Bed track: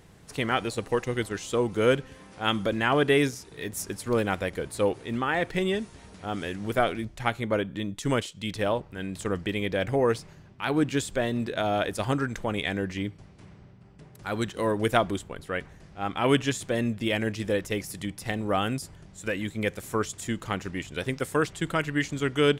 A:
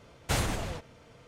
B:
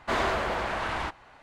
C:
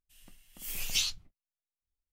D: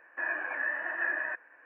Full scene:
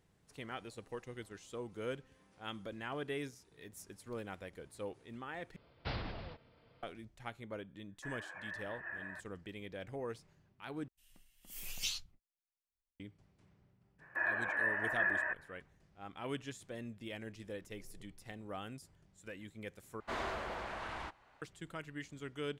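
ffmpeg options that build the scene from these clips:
-filter_complex "[4:a]asplit=2[a][b];[3:a]asplit=2[c][d];[0:a]volume=-18.5dB[e];[1:a]aresample=11025,aresample=44100[f];[a]agate=range=-33dB:threshold=-50dB:ratio=3:release=100:detection=peak[g];[d]lowpass=f=390:t=q:w=4.9[h];[e]asplit=4[i][j][k][l];[i]atrim=end=5.564[m];[f]atrim=end=1.27,asetpts=PTS-STARTPTS,volume=-11dB[n];[j]atrim=start=6.826:end=10.884[o];[c]atrim=end=2.12,asetpts=PTS-STARTPTS,volume=-8.5dB[p];[k]atrim=start=12.996:end=20.004[q];[2:a]atrim=end=1.42,asetpts=PTS-STARTPTS,volume=-12.5dB[r];[l]atrim=start=21.416[s];[g]atrim=end=1.65,asetpts=PTS-STARTPTS,volume=-14dB,afade=t=in:d=0.004:c=hsin,afade=t=out:st=1.646:d=0.004:c=hsin,adelay=7850[t];[b]atrim=end=1.65,asetpts=PTS-STARTPTS,volume=-2dB,afade=t=in:d=0.05,afade=t=out:st=1.6:d=0.05,adelay=13980[u];[h]atrim=end=2.12,asetpts=PTS-STARTPTS,volume=-16.5dB,afade=t=in:d=0.004:c=hsin,afade=t=out:st=2.116:d=0.004:c=hsin,adelay=17050[v];[m][n]acrossfade=d=0.004:c1=hsin:c2=hsin[w];[w][o]acrossfade=d=0.004:c1=hsin:c2=hsin[x];[x][p]acrossfade=d=0.004:c1=hsin:c2=hsin[y];[y][q]acrossfade=d=0.004:c1=hsin:c2=hsin[z];[z][r]acrossfade=d=0.004:c1=hsin:c2=hsin[aa];[aa][s]acrossfade=d=0.004:c1=hsin:c2=hsin[ab];[ab][t][u][v]amix=inputs=4:normalize=0"

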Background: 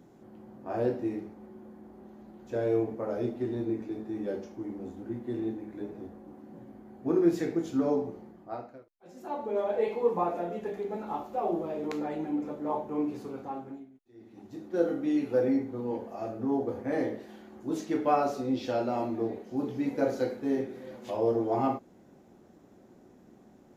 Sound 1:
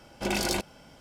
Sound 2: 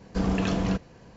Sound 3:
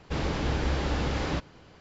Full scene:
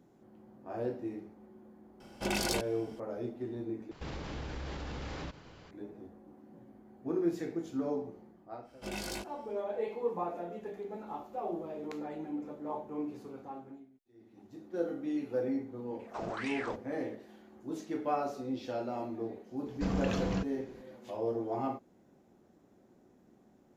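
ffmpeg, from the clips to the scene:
-filter_complex "[1:a]asplit=2[a][b];[2:a]asplit=2[c][d];[0:a]volume=-7dB[e];[3:a]acompressor=threshold=-36dB:ratio=6:attack=1.9:release=61:knee=1:detection=rms[f];[b]asplit=2[g][h];[h]adelay=19,volume=-3dB[i];[g][i]amix=inputs=2:normalize=0[j];[c]aeval=exprs='val(0)*sin(2*PI*1400*n/s+1400*0.75/1.9*sin(2*PI*1.9*n/s))':c=same[k];[e]asplit=2[l][m];[l]atrim=end=3.914[n];[f]atrim=end=1.8,asetpts=PTS-STARTPTS,volume=-1dB[o];[m]atrim=start=5.706[p];[a]atrim=end=1,asetpts=PTS-STARTPTS,volume=-4dB,afade=t=in:d=0.004:c=hsin,afade=t=out:st=0.996:d=0.004:c=hsin,adelay=2000[q];[j]atrim=end=1,asetpts=PTS-STARTPTS,volume=-13dB,afade=t=in:d=0.1,afade=t=out:st=0.9:d=0.1,adelay=8610[r];[k]atrim=end=1.16,asetpts=PTS-STARTPTS,volume=-12dB,afade=t=in:d=0.004:c=hsin,afade=t=out:st=1.156:d=0.004:c=hsin,adelay=15990[s];[d]atrim=end=1.16,asetpts=PTS-STARTPTS,volume=-7dB,afade=t=in:d=0.004:c=hsin,afade=t=out:st=1.156:d=0.004:c=hsin,adelay=19660[t];[n][o]acrossfade=d=0.004:c1=hsin:c2=hsin[u];[u][p]acrossfade=d=0.004:c1=hsin:c2=hsin[v];[v][q][r][s][t]amix=inputs=5:normalize=0"

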